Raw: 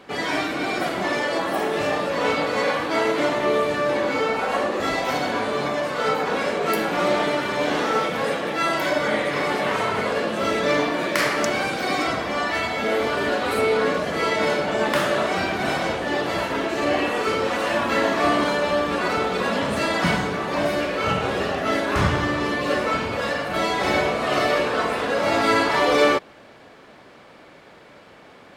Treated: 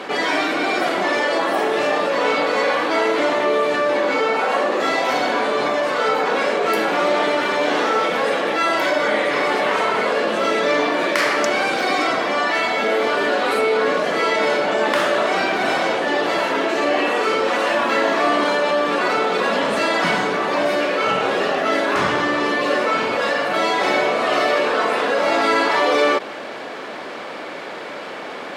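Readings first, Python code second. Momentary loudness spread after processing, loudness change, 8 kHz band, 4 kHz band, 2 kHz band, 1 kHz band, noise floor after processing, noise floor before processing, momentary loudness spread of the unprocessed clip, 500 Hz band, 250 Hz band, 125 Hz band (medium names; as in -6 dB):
2 LU, +3.5 dB, +1.5 dB, +3.5 dB, +4.0 dB, +4.5 dB, -31 dBFS, -47 dBFS, 4 LU, +3.5 dB, +1.0 dB, -7.0 dB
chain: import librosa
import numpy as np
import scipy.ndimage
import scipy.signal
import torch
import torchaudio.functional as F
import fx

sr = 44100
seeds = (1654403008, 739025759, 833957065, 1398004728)

y = scipy.signal.sosfilt(scipy.signal.butter(2, 290.0, 'highpass', fs=sr, output='sos'), x)
y = fx.high_shelf(y, sr, hz=10000.0, db=-10.5)
y = fx.env_flatten(y, sr, amount_pct=50)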